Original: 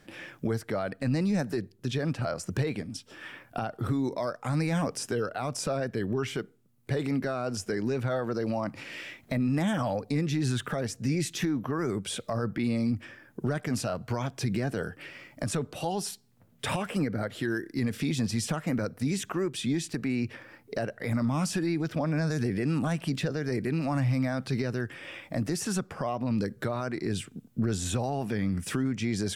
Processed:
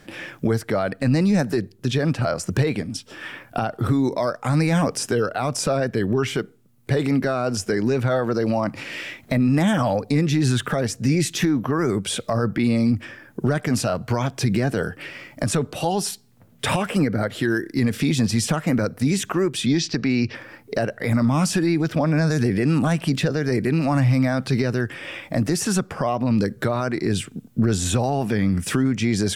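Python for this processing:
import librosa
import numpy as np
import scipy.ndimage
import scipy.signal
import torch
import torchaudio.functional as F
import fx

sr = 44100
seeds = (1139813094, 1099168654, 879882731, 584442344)

y = fx.high_shelf_res(x, sr, hz=7400.0, db=-13.5, q=3.0, at=(19.66, 20.35))
y = F.gain(torch.from_numpy(y), 8.5).numpy()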